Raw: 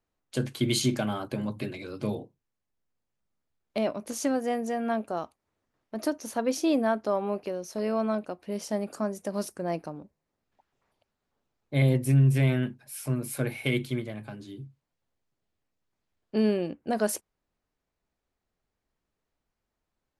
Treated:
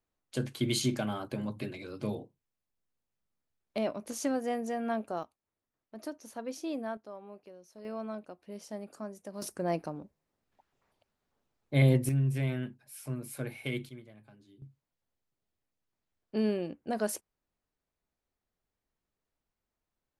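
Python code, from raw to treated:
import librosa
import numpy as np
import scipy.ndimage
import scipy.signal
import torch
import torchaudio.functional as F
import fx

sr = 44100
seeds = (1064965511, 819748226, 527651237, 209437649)

y = fx.gain(x, sr, db=fx.steps((0.0, -4.0), (5.23, -11.5), (6.97, -18.5), (7.85, -11.0), (9.42, -0.5), (12.09, -8.0), (13.89, -17.0), (14.62, -5.0)))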